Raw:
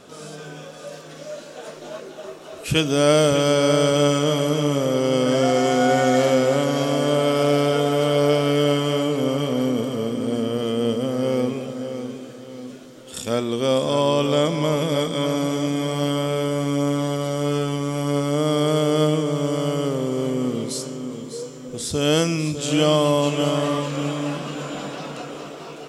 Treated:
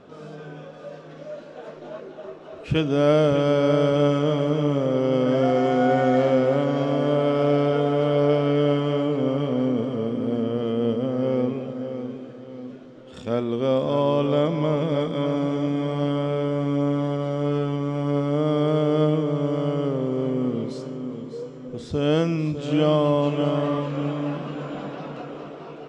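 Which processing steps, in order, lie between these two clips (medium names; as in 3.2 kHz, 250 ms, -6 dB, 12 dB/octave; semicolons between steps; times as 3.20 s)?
tape spacing loss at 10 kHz 30 dB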